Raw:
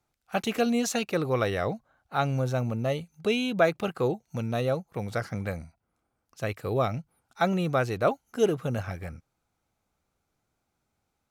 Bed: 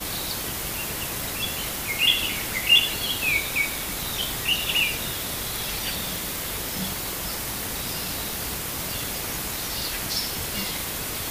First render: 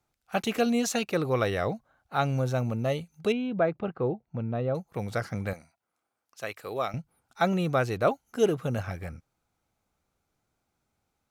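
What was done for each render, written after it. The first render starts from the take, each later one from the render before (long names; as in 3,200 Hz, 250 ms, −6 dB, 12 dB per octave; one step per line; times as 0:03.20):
0:03.32–0:04.75: head-to-tape spacing loss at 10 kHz 44 dB
0:05.53–0:06.94: high-pass filter 730 Hz 6 dB per octave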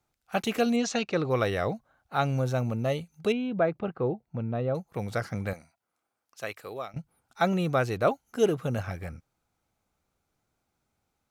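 0:00.76–0:01.30: low-pass filter 6,400 Hz 24 dB per octave
0:06.54–0:06.96: fade out, to −15 dB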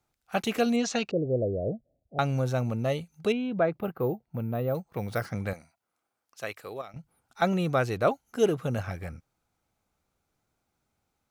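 0:01.11–0:02.19: Butterworth low-pass 650 Hz 72 dB per octave
0:03.75–0:05.26: bad sample-rate conversion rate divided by 3×, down filtered, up hold
0:06.81–0:07.42: downward compressor 5 to 1, threshold −37 dBFS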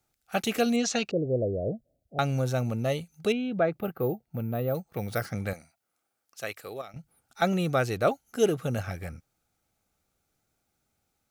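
high-shelf EQ 5,000 Hz +6.5 dB
notch filter 1,000 Hz, Q 6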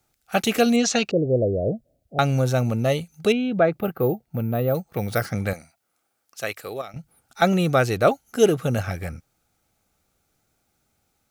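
level +6.5 dB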